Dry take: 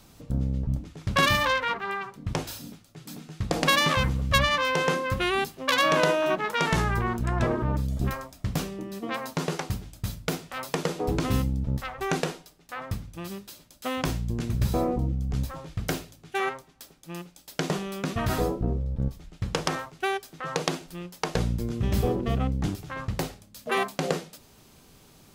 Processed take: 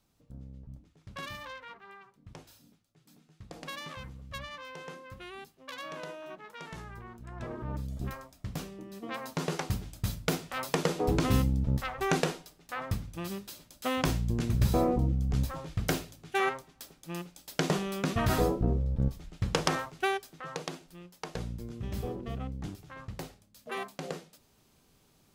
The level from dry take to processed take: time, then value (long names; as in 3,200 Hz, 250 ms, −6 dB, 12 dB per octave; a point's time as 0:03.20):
0:07.21 −19.5 dB
0:07.75 −9 dB
0:08.85 −9 dB
0:09.81 −0.5 dB
0:20.00 −0.5 dB
0:20.66 −11 dB